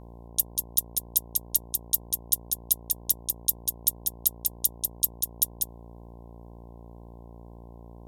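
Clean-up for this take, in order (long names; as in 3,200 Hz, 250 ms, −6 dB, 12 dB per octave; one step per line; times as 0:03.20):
hum removal 58 Hz, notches 18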